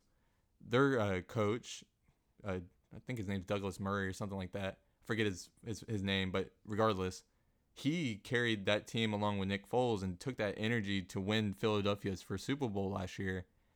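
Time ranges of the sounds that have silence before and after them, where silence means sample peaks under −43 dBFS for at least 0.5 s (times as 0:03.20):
0:00.71–0:01.79
0:02.45–0:07.18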